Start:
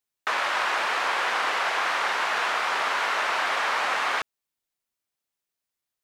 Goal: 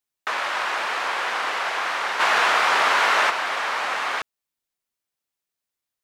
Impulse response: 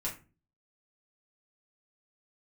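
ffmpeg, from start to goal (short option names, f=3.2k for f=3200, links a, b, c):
-filter_complex "[0:a]asplit=3[a][b][c];[a]afade=t=out:st=2.19:d=0.02[d];[b]acontrast=80,afade=t=in:st=2.19:d=0.02,afade=t=out:st=3.29:d=0.02[e];[c]afade=t=in:st=3.29:d=0.02[f];[d][e][f]amix=inputs=3:normalize=0"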